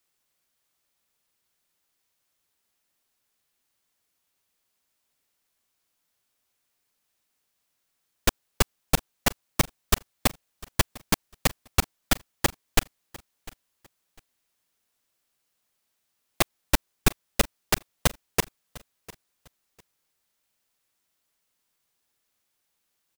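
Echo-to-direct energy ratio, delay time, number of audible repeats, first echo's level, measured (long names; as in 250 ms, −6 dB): −21.0 dB, 701 ms, 2, −21.0 dB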